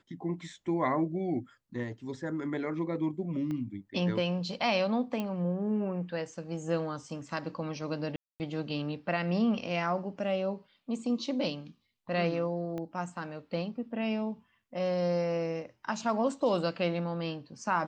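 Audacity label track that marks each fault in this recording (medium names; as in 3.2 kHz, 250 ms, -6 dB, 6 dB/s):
3.510000	3.510000	pop -26 dBFS
5.200000	5.200000	pop -21 dBFS
8.160000	8.400000	dropout 239 ms
12.780000	12.780000	pop -26 dBFS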